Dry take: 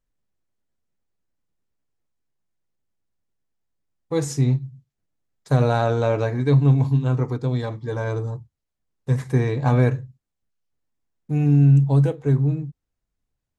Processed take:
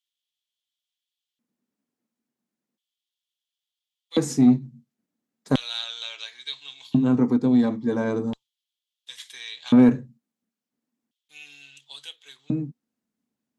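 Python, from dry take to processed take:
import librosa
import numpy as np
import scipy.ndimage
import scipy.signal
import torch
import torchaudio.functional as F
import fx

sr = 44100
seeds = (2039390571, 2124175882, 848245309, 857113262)

y = fx.filter_lfo_highpass(x, sr, shape='square', hz=0.36, low_hz=230.0, high_hz=3300.0, q=6.9)
y = fx.cheby_harmonics(y, sr, harmonics=(5,), levels_db=(-24,), full_scale_db=-2.5)
y = y * 10.0 ** (-3.0 / 20.0)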